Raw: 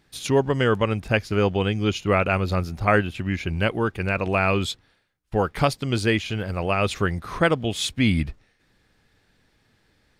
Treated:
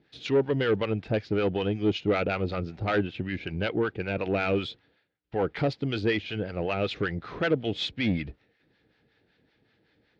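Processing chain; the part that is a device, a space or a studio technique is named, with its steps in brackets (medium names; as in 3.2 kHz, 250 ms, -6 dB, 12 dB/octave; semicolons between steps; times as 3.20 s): guitar amplifier with harmonic tremolo (harmonic tremolo 5.3 Hz, depth 70%, crossover 700 Hz; saturation -20 dBFS, distortion -10 dB; cabinet simulation 76–4200 Hz, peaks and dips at 81 Hz -5 dB, 310 Hz +5 dB, 460 Hz +5 dB, 1.1 kHz -7 dB)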